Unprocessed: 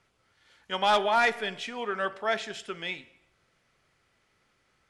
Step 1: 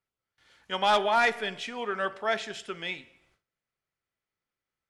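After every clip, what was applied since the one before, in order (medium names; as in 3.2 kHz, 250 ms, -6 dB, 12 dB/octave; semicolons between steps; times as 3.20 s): gate with hold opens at -57 dBFS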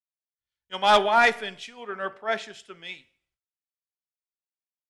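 three bands expanded up and down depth 100%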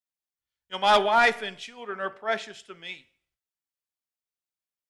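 saturation -9.5 dBFS, distortion -21 dB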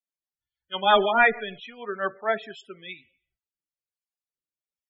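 rotary cabinet horn 6.3 Hz, later 1.2 Hz, at 1.83 s; loudest bins only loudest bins 32; trim +4.5 dB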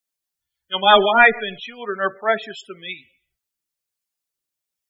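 treble shelf 3.7 kHz +7 dB; trim +5.5 dB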